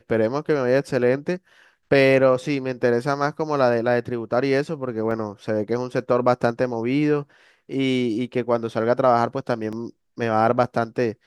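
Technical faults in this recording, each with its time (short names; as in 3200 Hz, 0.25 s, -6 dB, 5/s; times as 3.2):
5.11 gap 3.5 ms
9.72–9.73 gap 6.4 ms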